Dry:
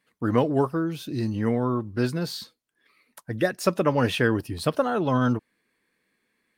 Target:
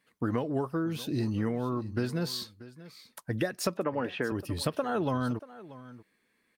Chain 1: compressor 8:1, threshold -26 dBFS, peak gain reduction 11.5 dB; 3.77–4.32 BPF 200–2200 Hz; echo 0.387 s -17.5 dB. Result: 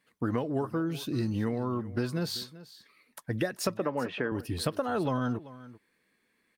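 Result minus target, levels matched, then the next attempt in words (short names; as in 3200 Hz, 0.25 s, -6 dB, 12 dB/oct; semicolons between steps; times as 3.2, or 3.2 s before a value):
echo 0.248 s early
compressor 8:1, threshold -26 dBFS, peak gain reduction 11.5 dB; 3.77–4.32 BPF 200–2200 Hz; echo 0.635 s -17.5 dB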